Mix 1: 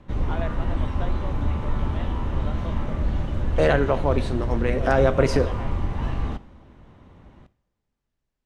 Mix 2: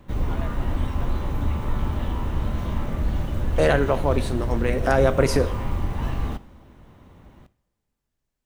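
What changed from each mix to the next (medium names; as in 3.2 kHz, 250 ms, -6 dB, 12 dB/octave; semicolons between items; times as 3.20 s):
first voice -7.0 dB; master: remove distance through air 71 m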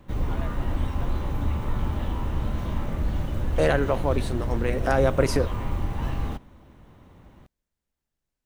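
reverb: off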